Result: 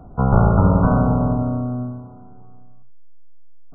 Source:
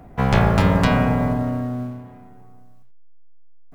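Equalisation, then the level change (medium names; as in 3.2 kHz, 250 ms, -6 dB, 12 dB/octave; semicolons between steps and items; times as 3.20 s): brick-wall FIR low-pass 1.5 kHz; bass shelf 130 Hz +5 dB; 0.0 dB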